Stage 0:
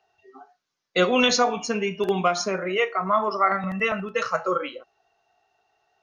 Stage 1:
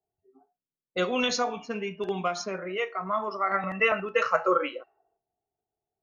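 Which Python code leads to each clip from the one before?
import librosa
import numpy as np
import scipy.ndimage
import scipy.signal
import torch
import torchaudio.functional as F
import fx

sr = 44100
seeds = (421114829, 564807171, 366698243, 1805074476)

y = fx.spec_box(x, sr, start_s=3.53, length_s=1.64, low_hz=270.0, high_hz=3000.0, gain_db=8)
y = fx.env_lowpass(y, sr, base_hz=320.0, full_db=-18.5)
y = y * 10.0 ** (-7.0 / 20.0)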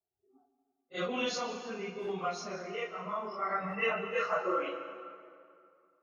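y = fx.phase_scramble(x, sr, seeds[0], window_ms=100)
y = fx.rev_plate(y, sr, seeds[1], rt60_s=2.4, hf_ratio=0.65, predelay_ms=105, drr_db=9.0)
y = y * 10.0 ** (-7.5 / 20.0)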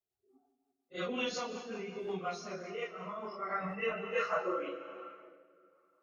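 y = fx.rotary_switch(x, sr, hz=5.5, then_hz=1.2, switch_at_s=2.9)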